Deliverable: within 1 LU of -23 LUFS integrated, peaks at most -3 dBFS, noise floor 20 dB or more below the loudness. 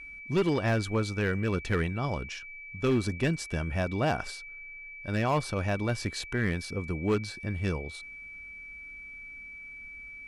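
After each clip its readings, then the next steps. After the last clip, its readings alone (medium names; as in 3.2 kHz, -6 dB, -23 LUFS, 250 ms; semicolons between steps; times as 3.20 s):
clipped samples 0.9%; clipping level -20.0 dBFS; steady tone 2.3 kHz; tone level -42 dBFS; loudness -30.5 LUFS; peak level -20.0 dBFS; loudness target -23.0 LUFS
-> clip repair -20 dBFS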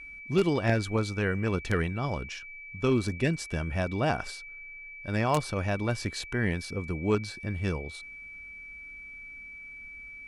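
clipped samples 0.0%; steady tone 2.3 kHz; tone level -42 dBFS
-> band-stop 2.3 kHz, Q 30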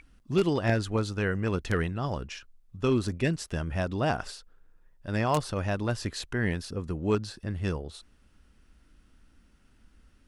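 steady tone not found; loudness -30.0 LUFS; peak level -11.0 dBFS; loudness target -23.0 LUFS
-> trim +7 dB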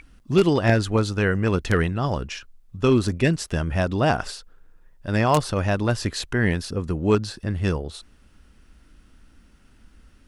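loudness -23.0 LUFS; peak level -4.0 dBFS; noise floor -55 dBFS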